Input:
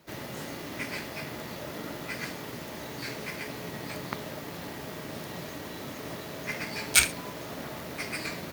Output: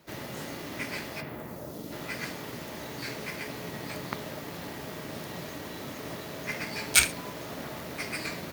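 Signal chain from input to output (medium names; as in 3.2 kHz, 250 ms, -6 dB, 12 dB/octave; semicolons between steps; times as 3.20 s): 1.20–1.91 s: peaking EQ 8.3 kHz -> 1.4 kHz -14.5 dB 1.9 oct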